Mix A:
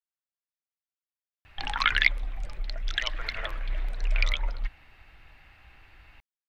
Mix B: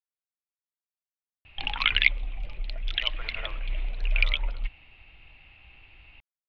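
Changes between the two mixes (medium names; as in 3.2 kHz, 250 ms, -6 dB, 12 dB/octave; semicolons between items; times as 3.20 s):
background: add resonant high shelf 2.1 kHz +7.5 dB, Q 3; master: add distance through air 400 m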